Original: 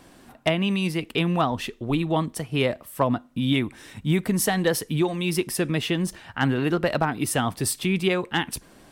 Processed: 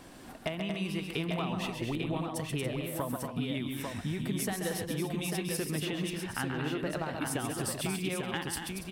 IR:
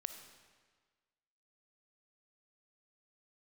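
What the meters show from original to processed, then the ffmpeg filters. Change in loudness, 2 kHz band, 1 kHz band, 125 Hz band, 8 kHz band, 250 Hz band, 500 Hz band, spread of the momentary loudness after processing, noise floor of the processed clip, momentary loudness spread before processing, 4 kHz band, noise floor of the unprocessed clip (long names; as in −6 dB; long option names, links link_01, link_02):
−9.5 dB, −9.0 dB, −10.5 dB, −9.0 dB, −7.0 dB, −9.5 dB, −10.5 dB, 3 LU, −46 dBFS, 5 LU, −8.5 dB, −52 dBFS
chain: -af "acompressor=threshold=-33dB:ratio=6,aecho=1:1:134|232|283|846:0.473|0.473|0.251|0.562"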